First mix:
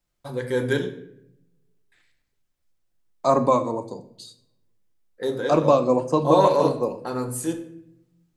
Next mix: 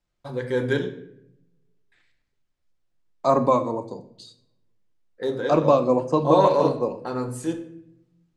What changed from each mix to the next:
master: add air absorption 67 m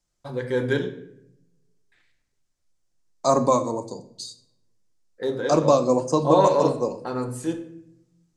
second voice: add resonant high shelf 4100 Hz +12.5 dB, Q 1.5

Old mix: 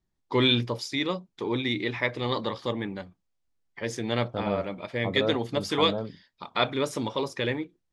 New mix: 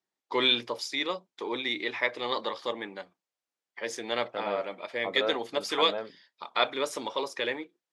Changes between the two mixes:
second voice: remove Butterworth band-stop 2200 Hz, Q 0.94; master: add HPF 450 Hz 12 dB/oct

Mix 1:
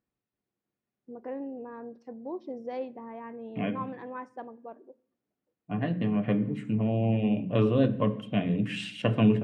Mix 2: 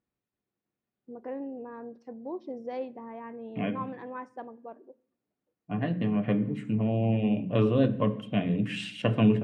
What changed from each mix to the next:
none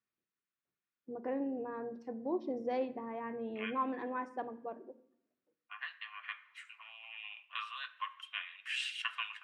first voice: send +9.0 dB; second voice: add steep high-pass 1100 Hz 48 dB/oct

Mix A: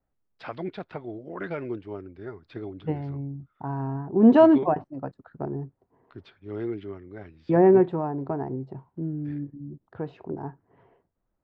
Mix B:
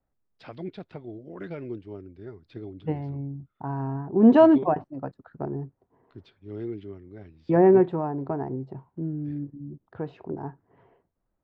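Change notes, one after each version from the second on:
first voice: add bell 1200 Hz -10 dB 2.4 oct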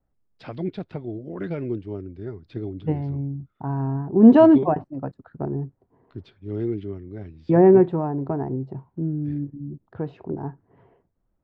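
first voice +3.5 dB; master: add low shelf 370 Hz +6.5 dB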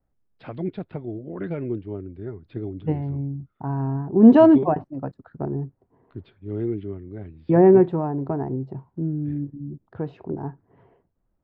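first voice: add running mean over 7 samples

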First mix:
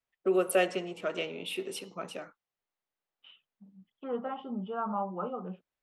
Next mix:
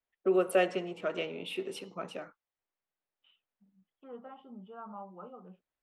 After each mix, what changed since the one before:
first voice: add high shelf 4600 Hz -9.5 dB; second voice -12.0 dB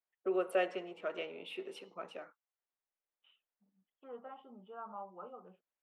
first voice -4.5 dB; master: add tone controls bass -13 dB, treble -8 dB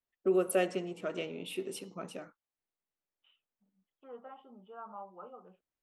first voice: remove three-band isolator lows -17 dB, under 410 Hz, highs -19 dB, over 3600 Hz

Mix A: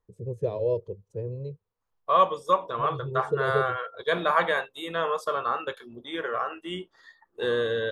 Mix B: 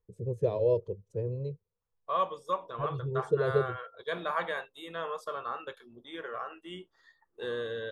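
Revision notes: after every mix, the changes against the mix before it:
second voice -9.0 dB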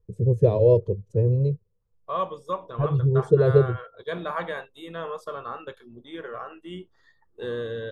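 first voice +4.5 dB; master: add low shelf 350 Hz +11.5 dB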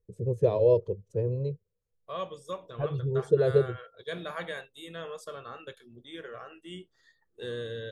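second voice: add graphic EQ 125/1000/8000 Hz +8/-11/+7 dB; master: add low shelf 350 Hz -11.5 dB

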